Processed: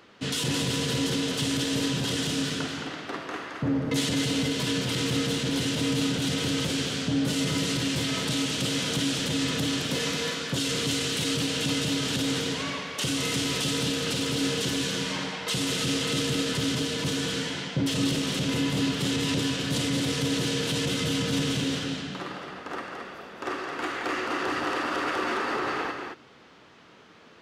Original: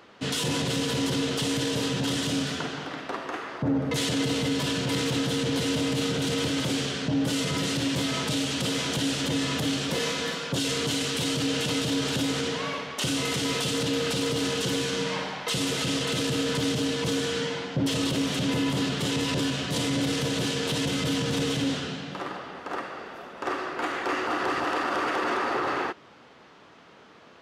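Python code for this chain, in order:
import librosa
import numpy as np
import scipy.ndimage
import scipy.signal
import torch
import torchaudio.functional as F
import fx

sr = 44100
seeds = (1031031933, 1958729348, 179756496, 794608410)

p1 = fx.peak_eq(x, sr, hz=770.0, db=-4.5, octaves=1.6)
y = p1 + fx.echo_single(p1, sr, ms=218, db=-5.5, dry=0)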